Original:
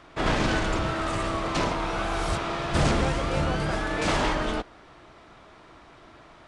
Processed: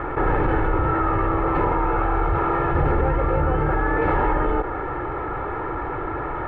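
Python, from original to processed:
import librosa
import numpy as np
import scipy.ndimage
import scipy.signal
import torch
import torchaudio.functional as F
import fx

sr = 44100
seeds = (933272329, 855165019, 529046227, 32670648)

y = scipy.signal.sosfilt(scipy.signal.butter(4, 1700.0, 'lowpass', fs=sr, output='sos'), x)
y = y + 0.71 * np.pad(y, (int(2.3 * sr / 1000.0), 0))[:len(y)]
y = fx.env_flatten(y, sr, amount_pct=70)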